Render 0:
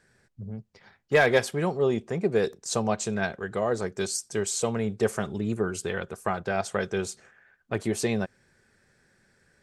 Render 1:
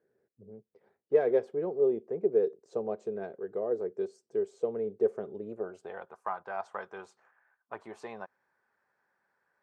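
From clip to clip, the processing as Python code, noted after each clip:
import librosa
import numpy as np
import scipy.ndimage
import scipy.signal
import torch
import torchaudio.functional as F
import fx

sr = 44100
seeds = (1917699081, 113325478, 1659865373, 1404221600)

y = fx.filter_sweep_bandpass(x, sr, from_hz=430.0, to_hz=970.0, start_s=5.25, end_s=6.22, q=3.2)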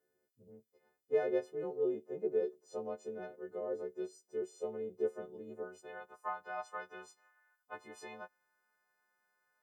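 y = fx.freq_snap(x, sr, grid_st=3)
y = y * 10.0 ** (-7.0 / 20.0)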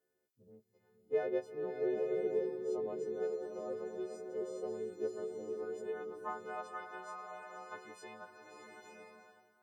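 y = fx.rev_bloom(x, sr, seeds[0], attack_ms=870, drr_db=1.0)
y = y * 10.0 ** (-2.0 / 20.0)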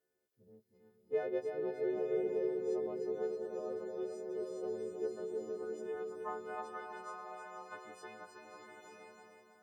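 y = fx.echo_feedback(x, sr, ms=316, feedback_pct=35, wet_db=-6.0)
y = y * 10.0 ** (-1.5 / 20.0)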